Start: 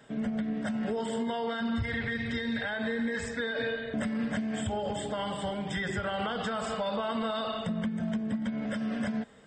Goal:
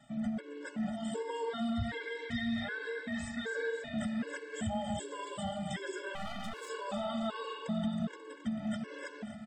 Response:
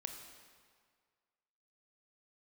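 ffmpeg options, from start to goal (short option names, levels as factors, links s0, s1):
-filter_complex "[0:a]equalizer=f=7300:t=o:w=0.77:g=3,aecho=1:1:269|538|807|1076|1345|1614|1883:0.335|0.198|0.117|0.0688|0.0406|0.0239|0.0141,asplit=3[s0][s1][s2];[s0]afade=t=out:st=6.14:d=0.02[s3];[s1]aeval=exprs='max(val(0),0)':c=same,afade=t=in:st=6.14:d=0.02,afade=t=out:st=6.68:d=0.02[s4];[s2]afade=t=in:st=6.68:d=0.02[s5];[s3][s4][s5]amix=inputs=3:normalize=0,asplit=2[s6][s7];[1:a]atrim=start_sample=2205,asetrate=24696,aresample=44100[s8];[s7][s8]afir=irnorm=-1:irlink=0,volume=0.376[s9];[s6][s9]amix=inputs=2:normalize=0,afftfilt=real='re*gt(sin(2*PI*1.3*pts/sr)*(1-2*mod(floor(b*sr/1024/290),2)),0)':imag='im*gt(sin(2*PI*1.3*pts/sr)*(1-2*mod(floor(b*sr/1024/290),2)),0)':win_size=1024:overlap=0.75,volume=0.531"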